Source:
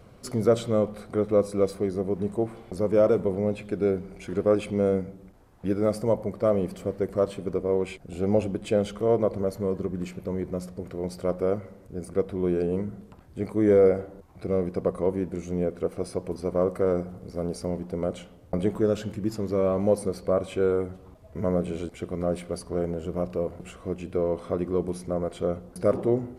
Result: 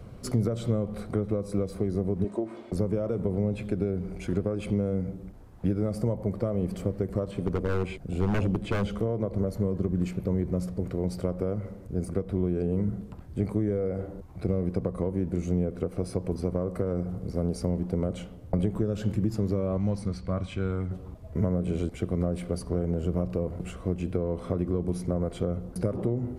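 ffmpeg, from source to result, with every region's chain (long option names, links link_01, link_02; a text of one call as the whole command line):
ffmpeg -i in.wav -filter_complex "[0:a]asettb=1/sr,asplit=3[link_01][link_02][link_03];[link_01]atrim=end=2.244[link_04];[link_02]atrim=start=2.24:end=2.72,asetpts=PTS-STARTPTS,afade=type=in:duration=0.004:curve=qsin,afade=type=out:start_time=0.476:duration=0.004:curve=qsin,highpass=270,lowpass=7400,aecho=1:1:3.2:0.6,atrim=end_sample=21168[link_05];[link_03]atrim=start=2.716[link_06];[link_04][link_05]acrossfade=duration=0.004:curve1=hsin:curve2=qsin[link_07];[link_07][link_06]acrossfade=duration=0.004:curve1=qsin:curve2=hsin,asettb=1/sr,asplit=3[link_08][link_09][link_10];[link_08]atrim=end=7.314[link_11];[link_09]atrim=start=7.31:end=8.91,asetpts=PTS-STARTPTS,afade=type=in:duration=0.004:curve=qsin,afade=type=out:start_time=1.596:duration=0.004:curve=qsin,acrossover=split=4100[link_12][link_13];[link_13]acompressor=threshold=-54dB:ratio=4:attack=1:release=60[link_14];[link_12][link_14]amix=inputs=2:normalize=0,aeval=exprs='0.0794*(abs(mod(val(0)/0.0794+3,4)-2)-1)':channel_layout=same[link_15];[link_10]atrim=start=8.906[link_16];[link_11][link_15]acrossfade=duration=0.004:curve1=hsin:curve2=qsin[link_17];[link_17][link_16]acrossfade=duration=0.004:curve1=qsin:curve2=hsin,asettb=1/sr,asplit=3[link_18][link_19][link_20];[link_18]atrim=end=19.774[link_21];[link_19]atrim=start=19.77:end=20.91,asetpts=PTS-STARTPTS,afade=type=in:duration=0.004:curve=qsin,afade=type=out:start_time=1.136:duration=0.004:curve=qsin,lowpass=5900,equalizer=frequency=460:width=0.82:gain=-14.5[link_22];[link_20]atrim=start=20.906[link_23];[link_21][link_22]acrossfade=duration=0.004:curve1=hsin:curve2=qsin[link_24];[link_24][link_23]acrossfade=duration=0.004:curve1=qsin:curve2=hsin,acompressor=threshold=-24dB:ratio=6,lowshelf=frequency=260:gain=10,acrossover=split=160[link_25][link_26];[link_26]acompressor=threshold=-26dB:ratio=6[link_27];[link_25][link_27]amix=inputs=2:normalize=0" out.wav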